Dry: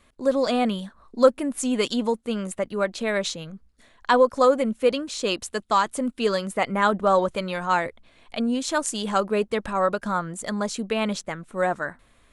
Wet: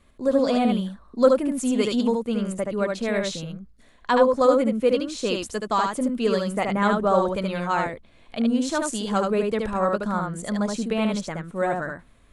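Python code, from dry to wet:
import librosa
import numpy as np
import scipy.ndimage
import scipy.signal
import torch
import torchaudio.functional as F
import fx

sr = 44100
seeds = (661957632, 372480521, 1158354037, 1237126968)

p1 = fx.low_shelf(x, sr, hz=430.0, db=7.5)
p2 = p1 + fx.echo_single(p1, sr, ms=74, db=-3.5, dry=0)
y = p2 * librosa.db_to_amplitude(-4.0)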